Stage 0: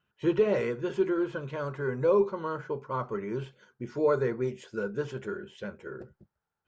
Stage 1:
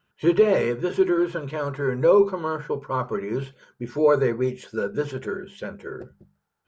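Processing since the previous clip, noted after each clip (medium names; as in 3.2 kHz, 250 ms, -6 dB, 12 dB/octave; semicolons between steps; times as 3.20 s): hum notches 50/100/150/200 Hz; trim +6.5 dB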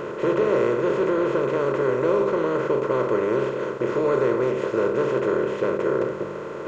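spectral levelling over time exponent 0.2; trim -9 dB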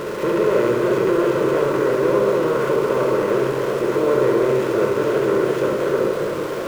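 jump at every zero crossing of -30 dBFS; on a send: flutter echo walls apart 11.6 m, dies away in 0.76 s; on the sum: modulated delay 326 ms, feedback 62%, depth 136 cents, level -9 dB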